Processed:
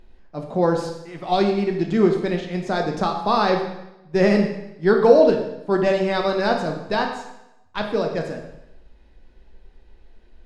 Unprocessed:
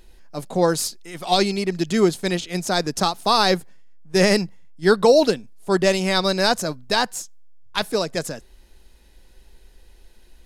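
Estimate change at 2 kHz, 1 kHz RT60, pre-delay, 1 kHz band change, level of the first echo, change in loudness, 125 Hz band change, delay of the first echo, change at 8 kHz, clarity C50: -3.0 dB, 0.85 s, 6 ms, 0.0 dB, none, 0.0 dB, 0.0 dB, none, under -15 dB, 6.0 dB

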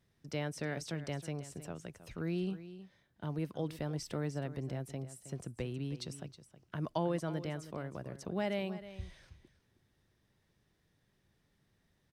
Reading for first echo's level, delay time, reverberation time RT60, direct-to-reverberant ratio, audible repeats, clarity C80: -14.0 dB, 0.318 s, none, none, 1, none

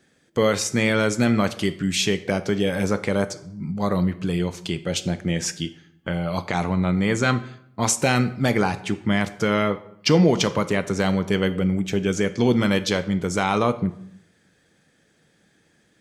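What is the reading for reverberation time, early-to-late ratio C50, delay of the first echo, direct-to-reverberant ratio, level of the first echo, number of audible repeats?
0.70 s, 15.5 dB, none, 11.0 dB, none, none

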